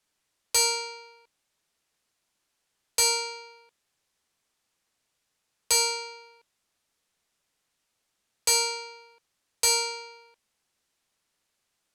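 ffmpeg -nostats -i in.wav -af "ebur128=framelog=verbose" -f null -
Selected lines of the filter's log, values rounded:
Integrated loudness:
  I:         -24.6 LUFS
  Threshold: -37.0 LUFS
Loudness range:
  LRA:         3.0 LU
  Threshold: -50.2 LUFS
  LRA low:   -31.4 LUFS
  LRA high:  -28.4 LUFS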